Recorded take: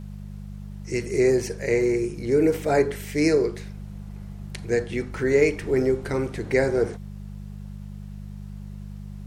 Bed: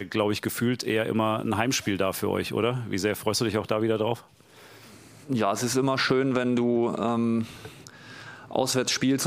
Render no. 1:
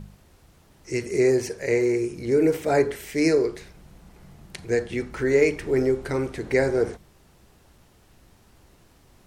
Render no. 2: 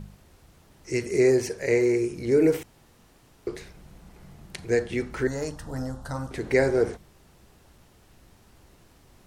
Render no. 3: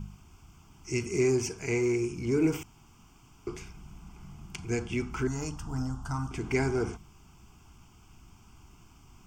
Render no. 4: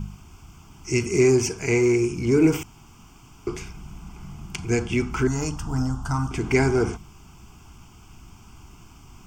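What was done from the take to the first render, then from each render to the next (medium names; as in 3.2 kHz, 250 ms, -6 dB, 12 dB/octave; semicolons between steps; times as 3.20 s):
de-hum 50 Hz, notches 4
2.63–3.47 s: room tone; 5.27–6.31 s: static phaser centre 940 Hz, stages 4
static phaser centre 2.7 kHz, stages 8; in parallel at -11 dB: saturation -31.5 dBFS, distortion -8 dB
trim +8 dB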